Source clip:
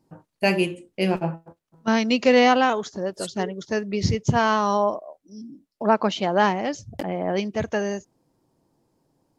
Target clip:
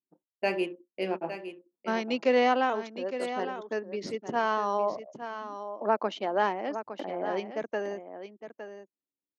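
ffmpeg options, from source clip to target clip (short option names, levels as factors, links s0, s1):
-af "anlmdn=3.98,highpass=f=260:w=0.5412,highpass=f=260:w=1.3066,highshelf=f=4100:g=-11.5,aecho=1:1:861:0.299,volume=0.501"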